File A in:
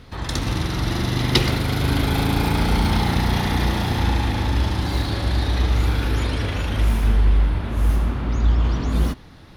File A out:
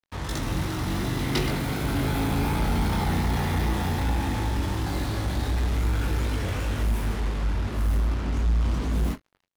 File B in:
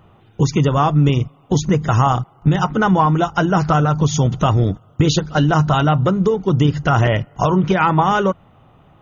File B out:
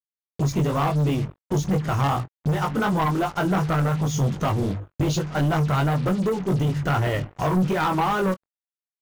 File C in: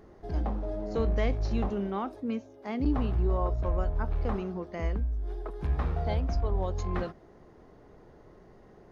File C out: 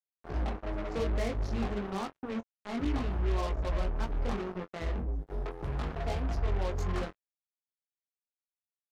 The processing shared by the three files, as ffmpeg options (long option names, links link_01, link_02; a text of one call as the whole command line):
ffmpeg -i in.wav -filter_complex "[0:a]equalizer=frequency=4100:width=1:gain=-5.5,bandreject=frequency=50:width_type=h:width=6,bandreject=frequency=100:width_type=h:width=6,flanger=delay=18.5:depth=3.2:speed=2.7,acrusher=bits=5:mix=0:aa=0.5,asoftclip=type=tanh:threshold=-17.5dB,asplit=2[link_01][link_02];[link_02]adelay=22,volume=-13.5dB[link_03];[link_01][link_03]amix=inputs=2:normalize=0" out.wav